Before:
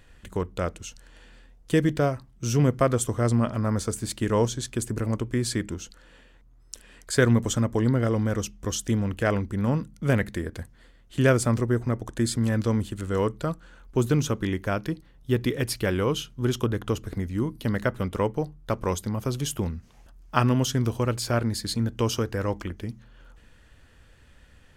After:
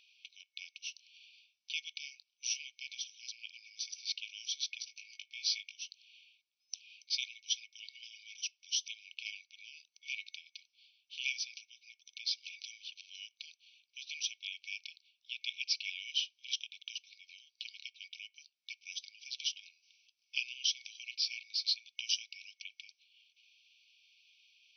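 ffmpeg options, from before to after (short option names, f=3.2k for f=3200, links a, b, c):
-filter_complex "[0:a]asettb=1/sr,asplit=3[a][b][c];[a]atrim=end=4.794[d];[b]atrim=start=4.79:end=5.77,asetpts=PTS-STARTPTS,afade=t=in:d=0.004:c=qsin,afade=t=out:st=0.976:d=0.004:c=qsin,asplit=2[e][f];[f]adelay=19,volume=-4.5dB[g];[e][g]amix=inputs=2:normalize=0,atrim=end_sample=43218[h];[c]atrim=start=5.766[i];[d][h]acrossfade=d=0.004:c1=hsin:c2=qsin[j];[j][i]acrossfade=d=0.004:c1=qsin:c2=hsin,afftfilt=real='re*between(b*sr/4096,2200,6100)':imag='im*between(b*sr/4096,2200,6100)':win_size=4096:overlap=0.75,volume=1dB"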